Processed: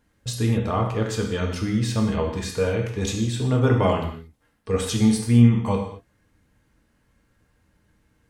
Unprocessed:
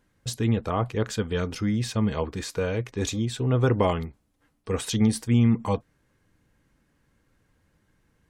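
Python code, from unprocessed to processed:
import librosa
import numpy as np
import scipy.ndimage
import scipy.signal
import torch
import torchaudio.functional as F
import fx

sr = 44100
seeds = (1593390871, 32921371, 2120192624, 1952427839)

y = fx.rev_gated(x, sr, seeds[0], gate_ms=260, shape='falling', drr_db=0.5)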